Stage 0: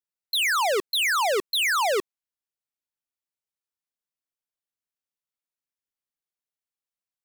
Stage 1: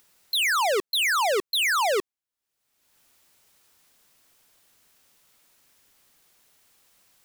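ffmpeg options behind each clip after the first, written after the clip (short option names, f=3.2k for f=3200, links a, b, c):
-af "acompressor=mode=upward:threshold=-39dB:ratio=2.5"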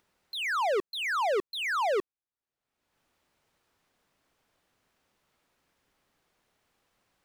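-af "lowpass=f=1.4k:p=1,volume=-2.5dB"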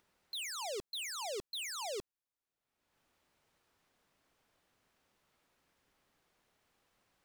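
-af "aeval=exprs='0.02*(abs(mod(val(0)/0.02+3,4)-2)-1)':c=same,volume=-2dB"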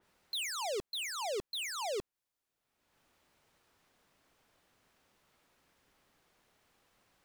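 -af "adynamicequalizer=threshold=0.00158:dfrequency=3100:dqfactor=0.7:tfrequency=3100:tqfactor=0.7:attack=5:release=100:ratio=0.375:range=3:mode=cutabove:tftype=highshelf,volume=4.5dB"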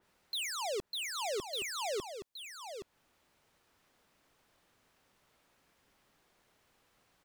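-af "aecho=1:1:821:0.376"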